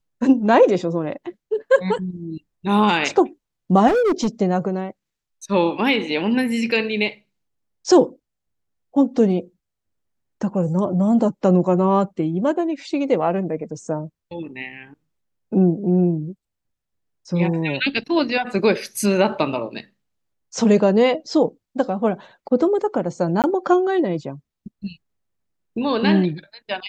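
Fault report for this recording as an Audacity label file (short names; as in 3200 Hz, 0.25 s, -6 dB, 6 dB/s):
3.870000	4.280000	clipped -15 dBFS
23.420000	23.440000	gap 18 ms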